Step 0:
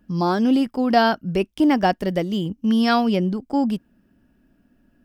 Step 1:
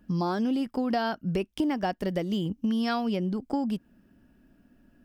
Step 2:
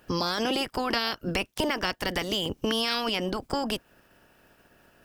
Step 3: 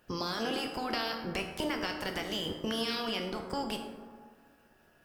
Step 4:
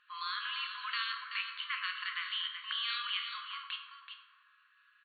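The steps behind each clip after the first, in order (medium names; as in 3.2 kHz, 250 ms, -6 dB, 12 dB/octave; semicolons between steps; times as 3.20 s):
compression, threshold -25 dBFS, peak gain reduction 13 dB
spectral peaks clipped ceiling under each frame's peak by 25 dB
feedback comb 76 Hz, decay 0.57 s, harmonics all, mix 70%; plate-style reverb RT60 1.9 s, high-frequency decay 0.35×, DRR 5 dB
brick-wall FIR band-pass 1–4.5 kHz; delay 380 ms -8.5 dB; trim +1 dB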